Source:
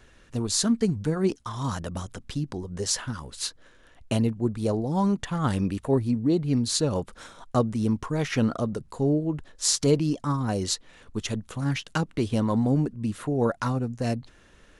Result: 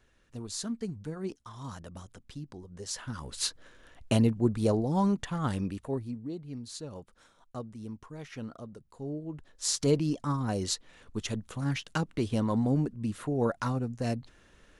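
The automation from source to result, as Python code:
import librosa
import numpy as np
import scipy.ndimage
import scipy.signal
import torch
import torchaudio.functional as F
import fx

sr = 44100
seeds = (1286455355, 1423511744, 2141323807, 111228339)

y = fx.gain(x, sr, db=fx.line((2.86, -12.0), (3.31, 0.0), (4.64, 0.0), (5.71, -7.0), (6.41, -16.5), (8.87, -16.5), (9.89, -4.0)))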